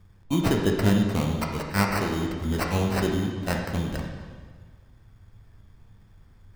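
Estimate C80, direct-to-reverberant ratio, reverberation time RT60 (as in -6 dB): 5.0 dB, 0.5 dB, 1.6 s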